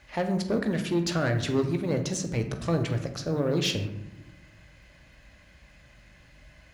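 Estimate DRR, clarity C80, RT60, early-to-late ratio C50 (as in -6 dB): 5.0 dB, 11.0 dB, 1.0 s, 9.0 dB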